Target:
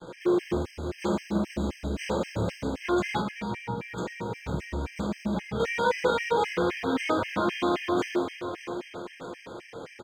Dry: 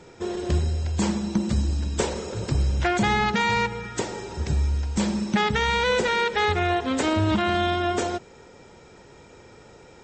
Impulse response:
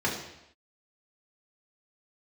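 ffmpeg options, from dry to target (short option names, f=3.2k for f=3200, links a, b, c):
-filter_complex "[0:a]aeval=exprs='(tanh(35.5*val(0)+0.45)-tanh(0.45))/35.5':c=same,lowshelf=f=290:g=-8.5[a];[1:a]atrim=start_sample=2205,asetrate=57330,aresample=44100[b];[a][b]afir=irnorm=-1:irlink=0,acrusher=bits=6:mix=0:aa=0.5,aemphasis=mode=reproduction:type=50kf,aecho=1:1:612|1224|1836|2448|3060:0.316|0.158|0.0791|0.0395|0.0198,asettb=1/sr,asplit=3[c][d][e];[c]atrim=end=3.204[f];[d]atrim=start=3.2:end=5.6,asetpts=PTS-STARTPTS,afade=t=in:d=0.004:c=qsin,afade=t=out:st=2.396:d=0.004:c=qsin,acrossover=split=300[g][h];[h]acompressor=threshold=-33dB:ratio=10[i];[g][i]amix=inputs=2:normalize=0[j];[e]atrim=start=5.596[k];[f][j]acrossfade=d=0.004:c1=hsin:c2=qsin[l];[l][k]acrossfade=d=0.004:c1=qsin:c2=hsin,afftfilt=real='re*gt(sin(2*PI*3.8*pts/sr)*(1-2*mod(floor(b*sr/1024/1600),2)),0)':imag='im*gt(sin(2*PI*3.8*pts/sr)*(1-2*mod(floor(b*sr/1024/1600),2)),0)':win_size=1024:overlap=0.75,volume=1.5dB"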